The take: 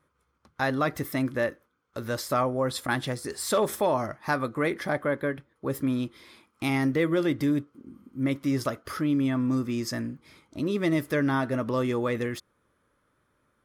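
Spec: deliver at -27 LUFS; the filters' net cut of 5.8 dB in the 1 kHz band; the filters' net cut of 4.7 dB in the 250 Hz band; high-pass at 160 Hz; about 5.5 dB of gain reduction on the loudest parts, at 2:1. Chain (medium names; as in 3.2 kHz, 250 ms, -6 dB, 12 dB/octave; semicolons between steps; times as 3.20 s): high-pass 160 Hz; peaking EQ 250 Hz -4.5 dB; peaking EQ 1 kHz -7.5 dB; compression 2:1, threshold -34 dBFS; trim +9 dB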